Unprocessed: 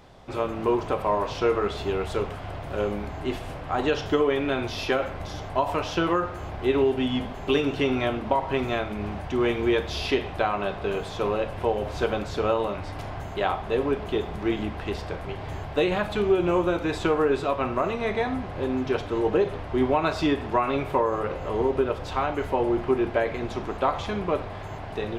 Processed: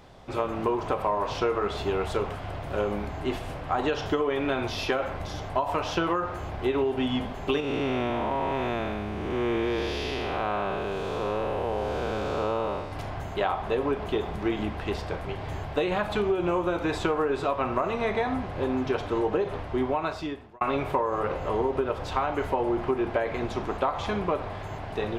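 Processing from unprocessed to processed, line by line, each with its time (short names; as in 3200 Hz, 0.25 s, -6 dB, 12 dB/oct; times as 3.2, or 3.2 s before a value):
7.6–12.92 time blur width 0.329 s
19.54–20.61 fade out
whole clip: dynamic EQ 960 Hz, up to +4 dB, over -35 dBFS, Q 0.95; compressor, threshold -22 dBFS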